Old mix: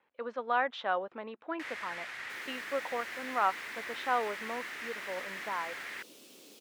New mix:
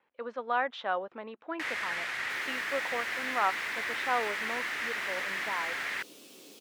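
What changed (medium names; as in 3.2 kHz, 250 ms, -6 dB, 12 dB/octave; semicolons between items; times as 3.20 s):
first sound +7.5 dB; second sound: send +10.0 dB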